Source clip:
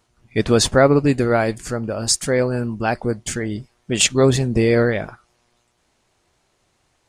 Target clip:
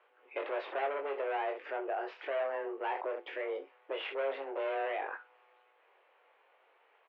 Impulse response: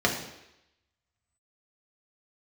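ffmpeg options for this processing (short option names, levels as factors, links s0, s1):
-filter_complex "[0:a]volume=10,asoftclip=hard,volume=0.1,asplit=2[s0][s1];[s1]aecho=0:1:22|65:0.531|0.141[s2];[s0][s2]amix=inputs=2:normalize=0,alimiter=level_in=1.5:limit=0.0631:level=0:latency=1:release=51,volume=0.668,highpass=f=280:t=q:w=0.5412,highpass=f=280:t=q:w=1.307,lowpass=f=2700:t=q:w=0.5176,lowpass=f=2700:t=q:w=0.7071,lowpass=f=2700:t=q:w=1.932,afreqshift=140"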